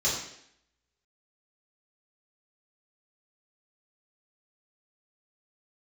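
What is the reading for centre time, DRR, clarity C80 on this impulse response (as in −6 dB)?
47 ms, −8.5 dB, 6.0 dB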